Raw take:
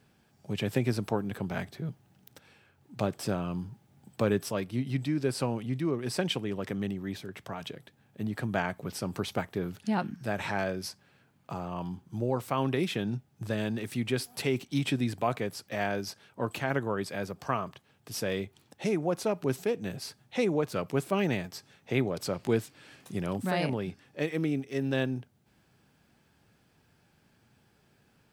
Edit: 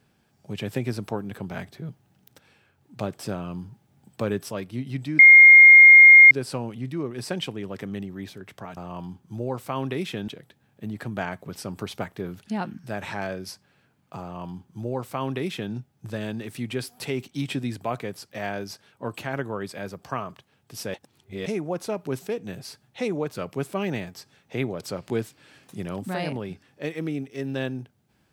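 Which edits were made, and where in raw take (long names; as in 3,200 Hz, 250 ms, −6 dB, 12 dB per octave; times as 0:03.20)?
0:05.19: insert tone 2,130 Hz −6 dBFS 1.12 s
0:11.59–0:13.10: duplicate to 0:07.65
0:18.31–0:18.83: reverse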